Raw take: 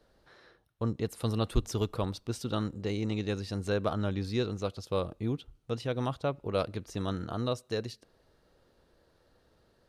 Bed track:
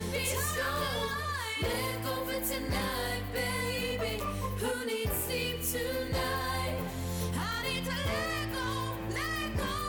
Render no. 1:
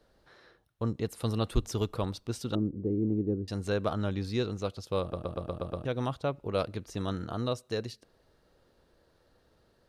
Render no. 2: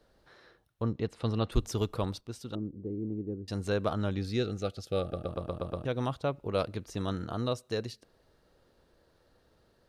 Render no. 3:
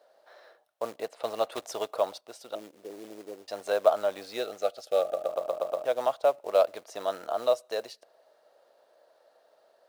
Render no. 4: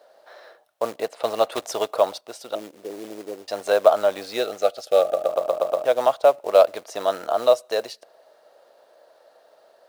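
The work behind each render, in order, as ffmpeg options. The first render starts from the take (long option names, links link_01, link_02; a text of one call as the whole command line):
ffmpeg -i in.wav -filter_complex "[0:a]asettb=1/sr,asplit=3[link_01][link_02][link_03];[link_01]atrim=end=2.554[link_04];[link_02]atrim=start=2.55:end=3.48,asetpts=PTS-STARTPTS,afade=type=in:duration=0.004:curve=qsin,afade=type=out:start_time=0.926:duration=0.004:curve=qsin,lowpass=frequency=340:width_type=q:width=2[link_05];[link_03]atrim=start=3.476[link_06];[link_04][link_05]acrossfade=duration=0.004:curve1=hsin:curve2=qsin[link_07];[link_07][link_06]acrossfade=duration=0.004:curve1=qsin:curve2=hsin,asplit=8[link_08][link_09][link_10][link_11][link_12][link_13][link_14][link_15];[link_08]atrim=end=5.132[link_16];[link_09]atrim=start=5.008:end=5.132[link_17];[link_10]atrim=start=5.008:end=5.132[link_18];[link_11]atrim=start=5.008:end=5.132[link_19];[link_12]atrim=start=5.008:end=5.132[link_20];[link_13]atrim=start=5.008:end=5.132[link_21];[link_14]atrim=start=5.008:end=5.132[link_22];[link_15]atrim=start=5.848[link_23];[link_16][link_17]acrossfade=duration=0.004:curve1=hsin:curve2=hsin[link_24];[link_24][link_18]acrossfade=duration=0.004:curve1=hsin:curve2=hsin[link_25];[link_25][link_19]acrossfade=duration=0.004:curve1=hsin:curve2=hsin[link_26];[link_26][link_20]acrossfade=duration=0.004:curve1=hsin:curve2=hsin[link_27];[link_27][link_21]acrossfade=duration=0.004:curve1=hsin:curve2=hsin[link_28];[link_28][link_22]acrossfade=duration=0.004:curve1=hsin:curve2=hsin[link_29];[link_29][link_23]acrossfade=duration=0.004:curve1=hsin:curve2=hsin" out.wav
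ffmpeg -i in.wav -filter_complex "[0:a]asettb=1/sr,asplit=3[link_01][link_02][link_03];[link_01]atrim=end=0.824[link_04];[link_02]atrim=start=0.82:end=1.52,asetpts=PTS-STARTPTS,afade=type=in:duration=0.004:curve=qsin,afade=type=out:start_time=0.696:duration=0.004:curve=qsin,lowpass=4300[link_05];[link_03]atrim=start=1.516[link_06];[link_04][link_05]acrossfade=duration=0.004:curve1=hsin:curve2=qsin[link_07];[link_07][link_06]acrossfade=duration=0.004:curve1=qsin:curve2=hsin,asettb=1/sr,asplit=3[link_08][link_09][link_10];[link_08]atrim=end=4.174[link_11];[link_09]atrim=start=4.17:end=5.29,asetpts=PTS-STARTPTS,afade=type=in:duration=0.004:curve=qsin,afade=type=out:start_time=1.116:duration=0.004:curve=qsin,asuperstop=centerf=990:order=12:qfactor=3.4[link_12];[link_10]atrim=start=5.286[link_13];[link_11][link_12]acrossfade=duration=0.004:curve1=hsin:curve2=qsin[link_14];[link_14][link_13]acrossfade=duration=0.004:curve1=qsin:curve2=hsin,asplit=3[link_15][link_16][link_17];[link_15]atrim=end=2.212[link_18];[link_16]atrim=start=2.208:end=3.482,asetpts=PTS-STARTPTS,volume=-6.5dB[link_19];[link_17]atrim=start=3.478[link_20];[link_18][link_19]acrossfade=duration=0.004:curve1=hsin:curve2=hsin[link_21];[link_21][link_20]acrossfade=duration=0.004:curve1=hsin:curve2=hsin" out.wav
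ffmpeg -i in.wav -af "acrusher=bits=5:mode=log:mix=0:aa=0.000001,highpass=frequency=630:width_type=q:width=4.9" out.wav
ffmpeg -i in.wav -af "volume=8dB,alimiter=limit=-2dB:level=0:latency=1" out.wav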